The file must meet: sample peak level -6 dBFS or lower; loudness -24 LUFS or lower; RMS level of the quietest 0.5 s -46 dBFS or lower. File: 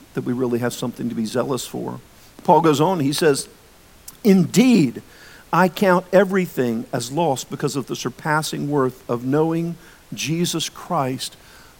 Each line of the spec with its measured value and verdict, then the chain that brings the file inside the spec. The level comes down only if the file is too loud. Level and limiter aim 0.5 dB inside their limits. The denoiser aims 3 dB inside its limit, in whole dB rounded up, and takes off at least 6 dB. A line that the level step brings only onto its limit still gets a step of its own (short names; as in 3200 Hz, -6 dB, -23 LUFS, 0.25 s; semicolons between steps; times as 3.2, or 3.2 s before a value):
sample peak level -1.5 dBFS: fail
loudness -20.0 LUFS: fail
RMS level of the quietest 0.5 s -49 dBFS: OK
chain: gain -4.5 dB; limiter -6.5 dBFS